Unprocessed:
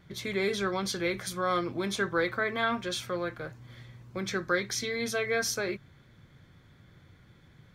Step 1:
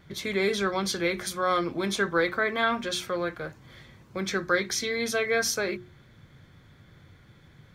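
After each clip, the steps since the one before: notches 60/120/180/240/300/360 Hz; gain +3.5 dB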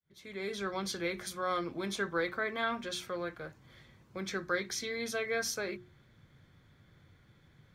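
opening faded in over 0.77 s; gain -8 dB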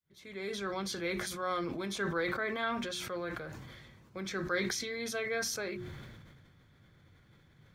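sustainer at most 29 dB/s; gain -1.5 dB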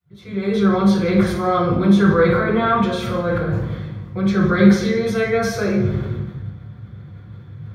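reverb RT60 1.1 s, pre-delay 3 ms, DRR -8.5 dB; gain -1 dB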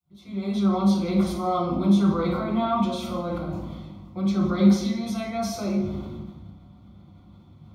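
fixed phaser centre 450 Hz, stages 6; gain -3 dB

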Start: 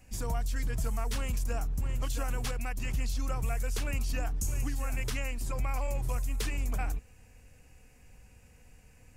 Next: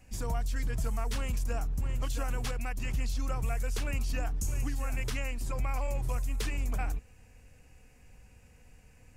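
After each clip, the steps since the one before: high shelf 7300 Hz -4 dB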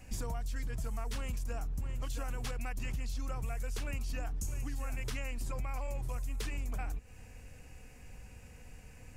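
compressor 6:1, threshold -39 dBFS, peak gain reduction 12 dB; gain +5 dB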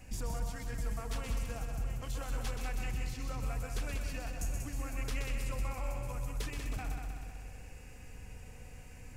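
soft clip -27.5 dBFS, distortion -26 dB; multi-head echo 63 ms, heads second and third, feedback 60%, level -6.5 dB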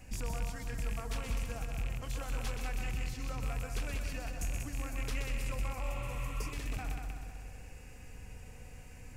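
rattling part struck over -34 dBFS, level -34 dBFS; spectral repair 5.87–6.5, 1000–4400 Hz before

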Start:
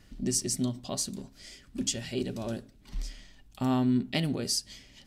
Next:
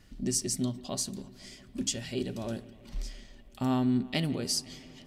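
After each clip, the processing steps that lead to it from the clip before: analogue delay 0.169 s, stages 4096, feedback 79%, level -21 dB; gain -1 dB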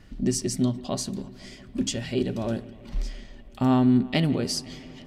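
high shelf 4400 Hz -11 dB; gain +7.5 dB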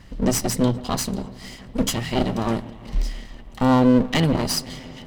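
minimum comb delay 1 ms; gain +6.5 dB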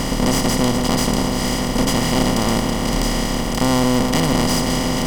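per-bin compression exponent 0.2; gain -4.5 dB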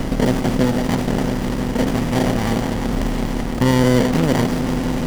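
running maximum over 33 samples

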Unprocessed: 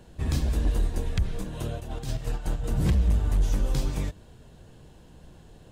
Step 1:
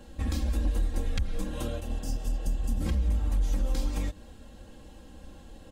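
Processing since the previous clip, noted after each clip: spectral repair 1.91–2.78, 280–4600 Hz before; compressor 3:1, threshold -29 dBFS, peak gain reduction 8 dB; comb 3.7 ms, depth 89%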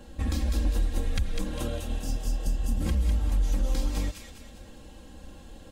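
thin delay 0.201 s, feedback 44%, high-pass 1800 Hz, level -3.5 dB; gain +1.5 dB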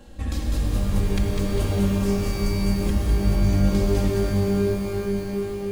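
shimmer reverb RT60 3.9 s, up +12 st, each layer -2 dB, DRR 1 dB

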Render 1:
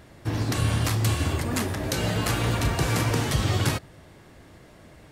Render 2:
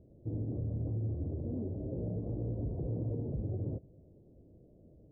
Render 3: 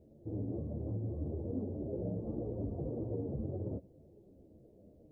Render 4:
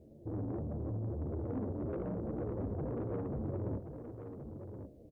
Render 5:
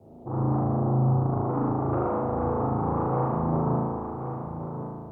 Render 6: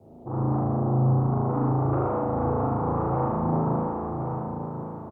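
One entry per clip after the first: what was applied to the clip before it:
steep low-pass 560 Hz 36 dB/oct; limiter -20.5 dBFS, peak gain reduction 6.5 dB; gain -8 dB
low shelf 180 Hz -9 dB; ensemble effect; gain +6.5 dB
tube stage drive 37 dB, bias 0.25; on a send: echo 1.075 s -8.5 dB; on the sum: gain +4 dB
band shelf 960 Hz +14 dB 1.1 oct; spring tank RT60 1.6 s, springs 36 ms, chirp 25 ms, DRR -5 dB; frequency shift +21 Hz; gain +3.5 dB
echo 0.66 s -7.5 dB

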